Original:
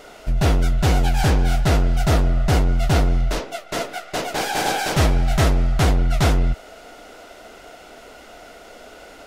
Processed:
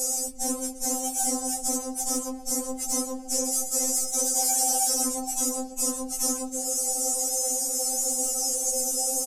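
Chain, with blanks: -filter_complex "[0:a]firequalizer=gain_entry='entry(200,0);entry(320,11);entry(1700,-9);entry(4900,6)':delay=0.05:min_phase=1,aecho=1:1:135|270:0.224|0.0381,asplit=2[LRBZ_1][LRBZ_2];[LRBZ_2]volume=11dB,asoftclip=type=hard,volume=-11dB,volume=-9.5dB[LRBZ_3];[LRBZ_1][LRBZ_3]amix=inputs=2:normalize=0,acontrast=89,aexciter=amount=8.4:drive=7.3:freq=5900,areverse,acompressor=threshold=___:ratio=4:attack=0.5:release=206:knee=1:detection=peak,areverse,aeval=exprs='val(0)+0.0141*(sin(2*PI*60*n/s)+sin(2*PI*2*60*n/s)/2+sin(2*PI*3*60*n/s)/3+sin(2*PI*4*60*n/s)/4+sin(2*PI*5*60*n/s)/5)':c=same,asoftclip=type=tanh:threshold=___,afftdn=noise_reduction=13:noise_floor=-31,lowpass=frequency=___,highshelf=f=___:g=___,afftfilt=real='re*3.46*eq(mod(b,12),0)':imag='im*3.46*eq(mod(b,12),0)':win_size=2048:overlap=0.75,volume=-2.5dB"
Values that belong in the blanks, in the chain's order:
-13dB, -17dB, 8100, 3600, 9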